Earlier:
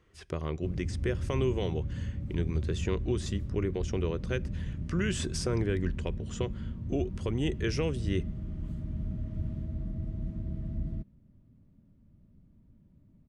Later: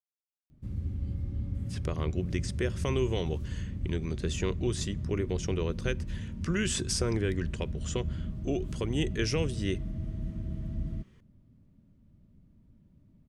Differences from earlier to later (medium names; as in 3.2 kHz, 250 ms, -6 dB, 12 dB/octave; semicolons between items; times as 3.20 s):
speech: entry +1.55 s; master: add treble shelf 3.4 kHz +7.5 dB